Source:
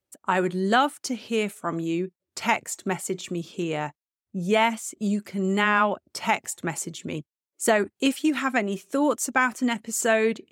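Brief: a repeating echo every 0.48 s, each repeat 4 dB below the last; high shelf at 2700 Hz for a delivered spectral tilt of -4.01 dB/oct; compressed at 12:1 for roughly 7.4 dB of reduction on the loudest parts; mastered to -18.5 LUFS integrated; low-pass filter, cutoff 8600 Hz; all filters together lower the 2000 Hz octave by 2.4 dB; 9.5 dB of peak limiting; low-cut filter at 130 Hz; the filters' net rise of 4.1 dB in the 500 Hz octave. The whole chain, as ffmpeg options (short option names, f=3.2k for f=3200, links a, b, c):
-af "highpass=130,lowpass=8.6k,equalizer=f=500:t=o:g=5.5,equalizer=f=2k:t=o:g=-5.5,highshelf=f=2.7k:g=5,acompressor=threshold=-20dB:ratio=12,alimiter=limit=-18.5dB:level=0:latency=1,aecho=1:1:480|960|1440|1920|2400|2880|3360|3840|4320:0.631|0.398|0.25|0.158|0.0994|0.0626|0.0394|0.0249|0.0157,volume=9dB"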